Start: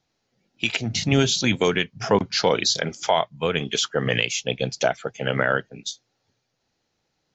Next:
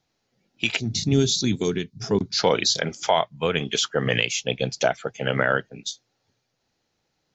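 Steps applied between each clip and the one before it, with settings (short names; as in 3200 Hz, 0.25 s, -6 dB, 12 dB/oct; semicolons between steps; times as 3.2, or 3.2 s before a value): spectral gain 0.79–2.39, 440–3400 Hz -12 dB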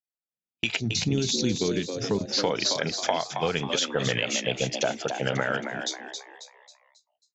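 gate -41 dBFS, range -36 dB; compressor, threshold -22 dBFS, peak gain reduction 8 dB; on a send: frequency-shifting echo 0.271 s, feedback 42%, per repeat +92 Hz, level -7 dB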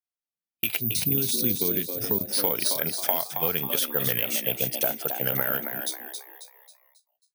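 careless resampling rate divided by 3×, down filtered, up zero stuff; gain -4 dB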